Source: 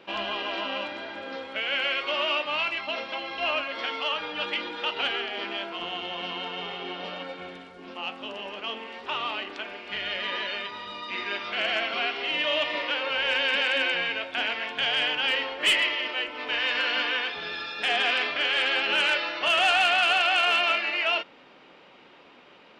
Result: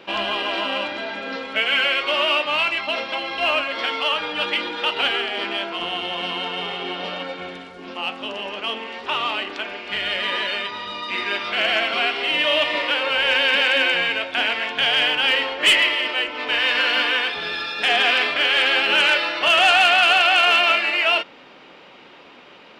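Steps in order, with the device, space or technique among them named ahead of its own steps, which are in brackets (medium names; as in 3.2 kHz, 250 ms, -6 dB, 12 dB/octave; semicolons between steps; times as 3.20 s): 0.97–1.85 s: comb 4.5 ms, depth 57%; exciter from parts (in parallel at -10 dB: high-pass 3.1 kHz 6 dB/octave + saturation -37.5 dBFS, distortion -4 dB); on the sum: trim +6.5 dB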